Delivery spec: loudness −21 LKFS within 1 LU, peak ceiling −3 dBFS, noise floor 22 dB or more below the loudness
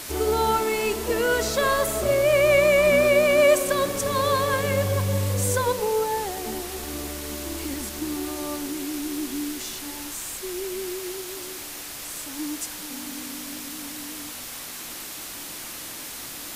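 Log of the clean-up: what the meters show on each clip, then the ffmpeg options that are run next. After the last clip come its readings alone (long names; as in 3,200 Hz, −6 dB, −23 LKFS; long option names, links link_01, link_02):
background noise floor −37 dBFS; target noise floor −47 dBFS; integrated loudness −25.0 LKFS; sample peak −6.5 dBFS; target loudness −21.0 LKFS
→ -af "afftdn=noise_reduction=10:noise_floor=-37"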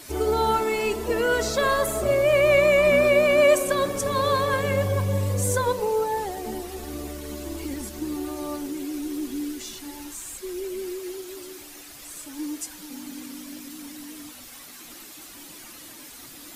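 background noise floor −44 dBFS; target noise floor −46 dBFS
→ -af "afftdn=noise_reduction=6:noise_floor=-44"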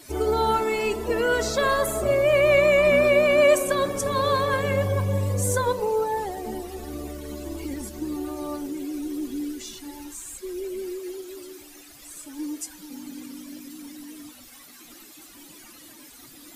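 background noise floor −48 dBFS; integrated loudness −23.5 LKFS; sample peak −6.5 dBFS; target loudness −21.0 LKFS
→ -af "volume=2.5dB"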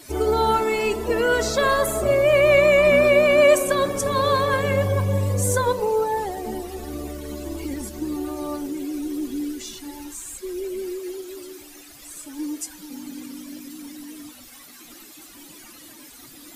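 integrated loudness −21.0 LKFS; sample peak −4.0 dBFS; background noise floor −45 dBFS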